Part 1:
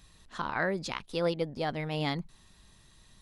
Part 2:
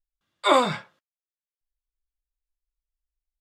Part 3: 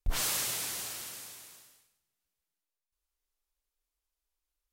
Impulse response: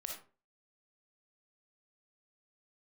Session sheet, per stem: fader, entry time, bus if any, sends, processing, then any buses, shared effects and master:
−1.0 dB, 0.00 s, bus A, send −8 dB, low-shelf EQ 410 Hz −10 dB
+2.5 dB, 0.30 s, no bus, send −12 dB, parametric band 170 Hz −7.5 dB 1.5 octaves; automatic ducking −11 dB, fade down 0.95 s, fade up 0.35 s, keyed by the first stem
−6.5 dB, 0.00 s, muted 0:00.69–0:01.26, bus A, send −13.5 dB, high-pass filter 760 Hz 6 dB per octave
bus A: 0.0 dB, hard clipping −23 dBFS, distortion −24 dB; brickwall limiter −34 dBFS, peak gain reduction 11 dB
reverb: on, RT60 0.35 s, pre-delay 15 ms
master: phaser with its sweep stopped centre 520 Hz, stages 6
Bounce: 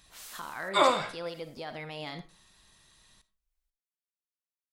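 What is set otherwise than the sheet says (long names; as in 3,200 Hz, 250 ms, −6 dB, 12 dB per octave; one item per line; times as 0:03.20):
stem 3 −6.5 dB → −16.5 dB
master: missing phaser with its sweep stopped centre 520 Hz, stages 6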